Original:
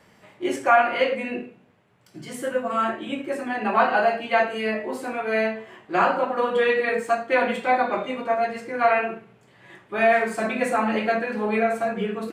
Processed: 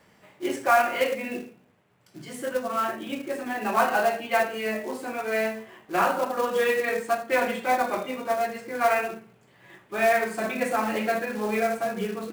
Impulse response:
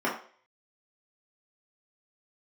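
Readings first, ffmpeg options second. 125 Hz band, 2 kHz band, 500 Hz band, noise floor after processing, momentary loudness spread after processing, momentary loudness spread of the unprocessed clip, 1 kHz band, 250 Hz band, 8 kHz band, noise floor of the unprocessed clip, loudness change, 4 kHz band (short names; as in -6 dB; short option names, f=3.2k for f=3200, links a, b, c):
-3.5 dB, -3.0 dB, -3.0 dB, -59 dBFS, 11 LU, 11 LU, -3.0 dB, -3.5 dB, n/a, -57 dBFS, -3.0 dB, -1.5 dB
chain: -af "acrusher=bits=4:mode=log:mix=0:aa=0.000001,bandreject=f=111.3:t=h:w=4,bandreject=f=222.6:t=h:w=4,volume=-3dB"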